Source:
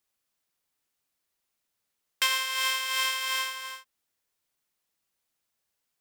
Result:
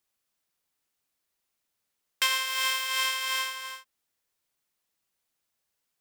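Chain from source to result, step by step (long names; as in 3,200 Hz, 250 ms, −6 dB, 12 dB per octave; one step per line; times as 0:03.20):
0:02.46–0:02.86: background noise blue −44 dBFS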